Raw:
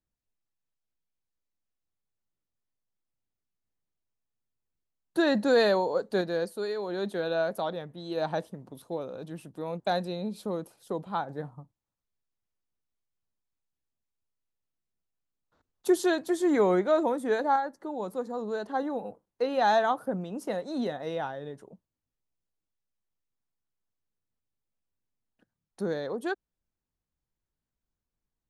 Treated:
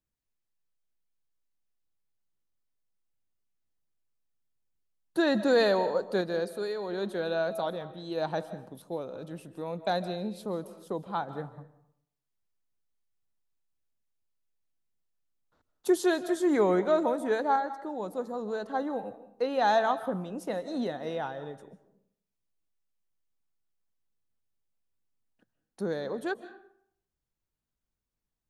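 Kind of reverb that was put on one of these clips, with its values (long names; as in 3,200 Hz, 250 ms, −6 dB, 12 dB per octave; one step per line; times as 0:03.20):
comb and all-pass reverb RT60 0.67 s, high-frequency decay 0.65×, pre-delay 110 ms, DRR 13.5 dB
level −1 dB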